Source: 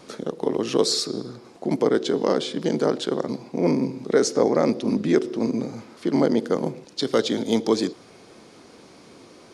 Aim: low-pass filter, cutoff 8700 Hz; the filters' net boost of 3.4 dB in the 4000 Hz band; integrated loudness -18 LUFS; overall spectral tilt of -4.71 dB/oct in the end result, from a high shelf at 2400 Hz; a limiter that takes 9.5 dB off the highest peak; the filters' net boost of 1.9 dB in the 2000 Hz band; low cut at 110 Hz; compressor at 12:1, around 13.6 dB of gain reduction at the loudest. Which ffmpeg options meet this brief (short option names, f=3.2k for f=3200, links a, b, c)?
-af "highpass=110,lowpass=8.7k,equalizer=f=2k:t=o:g=3,highshelf=f=2.4k:g=-5,equalizer=f=4k:t=o:g=8,acompressor=threshold=-28dB:ratio=12,volume=18.5dB,alimiter=limit=-7.5dB:level=0:latency=1"